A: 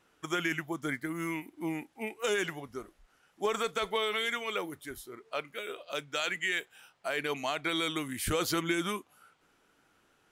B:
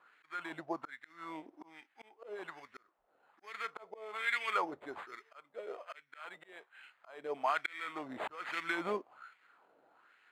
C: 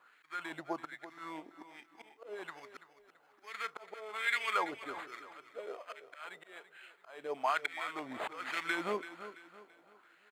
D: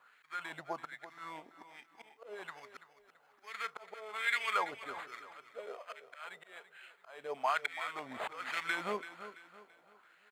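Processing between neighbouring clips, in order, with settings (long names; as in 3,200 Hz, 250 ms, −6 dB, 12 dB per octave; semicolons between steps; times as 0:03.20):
sample-rate reduction 5,600 Hz, jitter 0%; volume swells 636 ms; auto-filter band-pass sine 1.2 Hz 570–2,000 Hz; level +9 dB
high-shelf EQ 3,900 Hz +6.5 dB; repeating echo 335 ms, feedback 39%, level −13.5 dB
parametric band 320 Hz −9.5 dB 0.45 octaves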